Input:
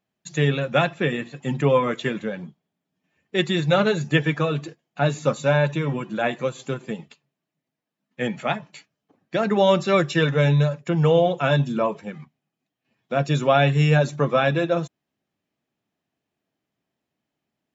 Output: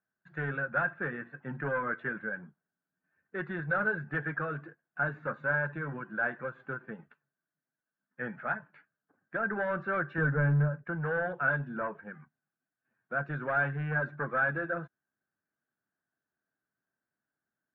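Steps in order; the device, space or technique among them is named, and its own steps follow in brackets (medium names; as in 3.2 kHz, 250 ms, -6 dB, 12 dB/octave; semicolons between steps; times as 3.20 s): overdriven synthesiser ladder filter (saturation -16.5 dBFS, distortion -12 dB; four-pole ladder low-pass 1.6 kHz, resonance 85%); 10.18–10.84 s: tilt EQ -3 dB/octave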